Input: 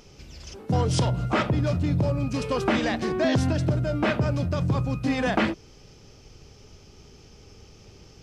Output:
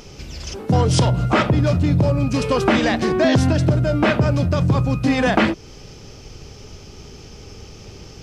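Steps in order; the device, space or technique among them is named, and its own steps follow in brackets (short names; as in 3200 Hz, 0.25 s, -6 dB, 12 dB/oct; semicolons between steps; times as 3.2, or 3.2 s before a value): parallel compression (in parallel at -1 dB: compressor, threshold -32 dBFS, peak gain reduction 13.5 dB); on the sum: gain +5 dB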